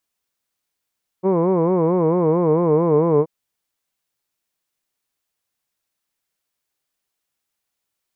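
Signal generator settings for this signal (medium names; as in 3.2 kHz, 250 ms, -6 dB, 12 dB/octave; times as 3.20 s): formant-synthesis vowel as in hood, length 2.03 s, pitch 180 Hz, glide -2.5 st, vibrato 4.5 Hz, vibrato depth 1.35 st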